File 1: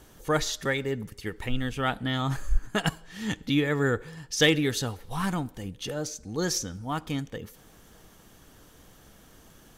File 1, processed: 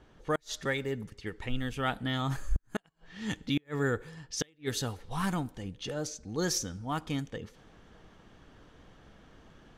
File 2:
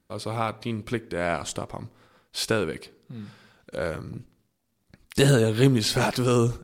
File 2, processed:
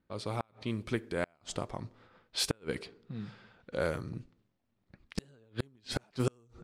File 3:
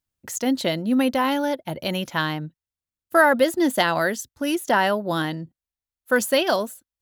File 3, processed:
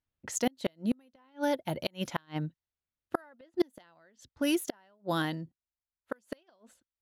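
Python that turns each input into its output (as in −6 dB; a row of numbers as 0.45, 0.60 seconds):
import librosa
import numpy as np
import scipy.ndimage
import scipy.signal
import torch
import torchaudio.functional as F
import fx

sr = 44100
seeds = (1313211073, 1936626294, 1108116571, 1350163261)

y = fx.gate_flip(x, sr, shuts_db=-13.0, range_db=-37)
y = fx.env_lowpass(y, sr, base_hz=2900.0, full_db=-26.0)
y = fx.rider(y, sr, range_db=4, speed_s=2.0)
y = F.gain(torch.from_numpy(y), -4.0).numpy()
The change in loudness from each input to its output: −5.5, −12.5, −12.5 LU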